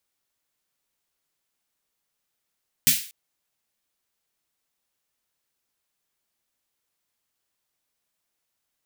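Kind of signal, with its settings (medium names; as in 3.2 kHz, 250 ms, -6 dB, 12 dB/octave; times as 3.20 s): snare drum length 0.24 s, tones 150 Hz, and 230 Hz, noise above 2.1 kHz, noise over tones 12 dB, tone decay 0.20 s, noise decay 0.42 s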